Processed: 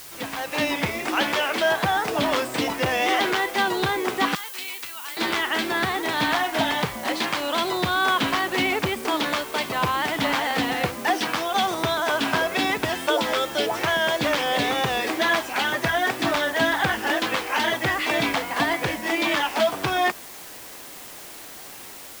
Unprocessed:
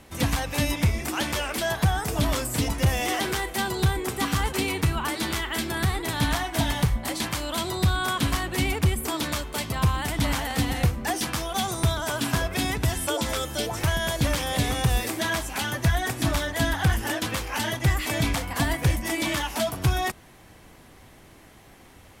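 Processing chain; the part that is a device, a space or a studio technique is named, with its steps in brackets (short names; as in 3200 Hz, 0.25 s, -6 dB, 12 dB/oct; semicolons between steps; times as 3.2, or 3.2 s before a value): dictaphone (BPF 330–3700 Hz; AGC gain up to 11 dB; wow and flutter; white noise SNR 17 dB); 4.35–5.17 pre-emphasis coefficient 0.97; gain -4 dB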